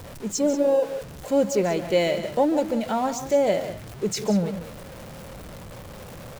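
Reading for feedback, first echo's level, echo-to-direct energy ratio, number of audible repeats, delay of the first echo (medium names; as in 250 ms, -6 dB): no regular repeats, -14.0 dB, -10.5 dB, 2, 144 ms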